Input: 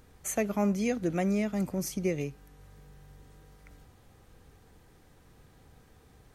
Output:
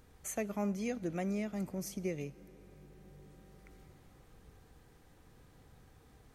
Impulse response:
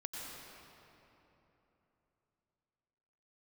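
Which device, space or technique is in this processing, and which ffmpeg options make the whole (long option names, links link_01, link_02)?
ducked reverb: -filter_complex "[0:a]asplit=3[link_01][link_02][link_03];[1:a]atrim=start_sample=2205[link_04];[link_02][link_04]afir=irnorm=-1:irlink=0[link_05];[link_03]apad=whole_len=279788[link_06];[link_05][link_06]sidechaincompress=threshold=-44dB:ratio=8:attack=16:release=1210,volume=0dB[link_07];[link_01][link_07]amix=inputs=2:normalize=0,volume=-8dB"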